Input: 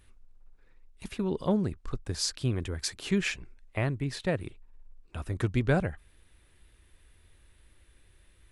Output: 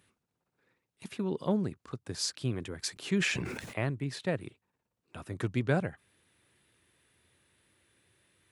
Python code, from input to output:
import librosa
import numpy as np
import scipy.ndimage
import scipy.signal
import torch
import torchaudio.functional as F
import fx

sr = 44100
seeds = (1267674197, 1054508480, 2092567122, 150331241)

y = scipy.signal.sosfilt(scipy.signal.butter(4, 110.0, 'highpass', fs=sr, output='sos'), x)
y = fx.sustainer(y, sr, db_per_s=35.0, at=(2.93, 3.9))
y = y * 10.0 ** (-2.5 / 20.0)